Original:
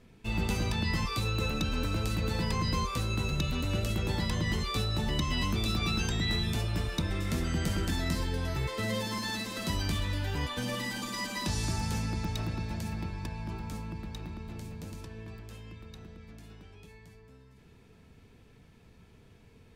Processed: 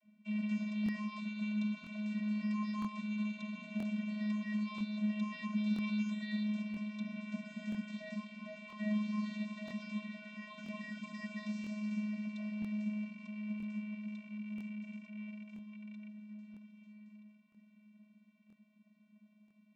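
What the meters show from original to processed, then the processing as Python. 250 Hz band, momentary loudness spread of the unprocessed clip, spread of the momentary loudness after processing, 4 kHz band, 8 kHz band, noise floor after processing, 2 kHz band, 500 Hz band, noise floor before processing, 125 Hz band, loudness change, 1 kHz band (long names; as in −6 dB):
0.0 dB, 14 LU, 13 LU, −18.0 dB, below −20 dB, −68 dBFS, −9.5 dB, −15.5 dB, −57 dBFS, −15.0 dB, −7.0 dB, −14.0 dB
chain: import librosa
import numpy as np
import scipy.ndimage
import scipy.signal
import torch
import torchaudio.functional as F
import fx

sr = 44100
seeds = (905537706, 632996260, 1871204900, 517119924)

p1 = fx.rattle_buzz(x, sr, strikes_db=-42.0, level_db=-31.0)
p2 = fx.peak_eq(p1, sr, hz=2400.0, db=12.5, octaves=0.38)
p3 = p2 + fx.echo_alternate(p2, sr, ms=638, hz=1200.0, feedback_pct=65, wet_db=-12.5, dry=0)
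p4 = fx.vocoder(p3, sr, bands=32, carrier='square', carrier_hz=211.0)
p5 = fx.buffer_crackle(p4, sr, first_s=0.84, period_s=0.98, block=1024, kind='repeat')
y = p5 * 10.0 ** (-7.0 / 20.0)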